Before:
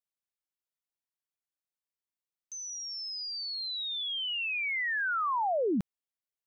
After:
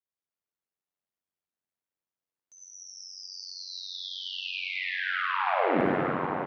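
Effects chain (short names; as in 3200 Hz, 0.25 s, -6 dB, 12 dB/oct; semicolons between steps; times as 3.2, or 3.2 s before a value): HPF 81 Hz; high shelf 2100 Hz -11.5 dB; echo 0.809 s -7.5 dB; reverb RT60 3.6 s, pre-delay 48 ms, DRR -7.5 dB; ring modulator 46 Hz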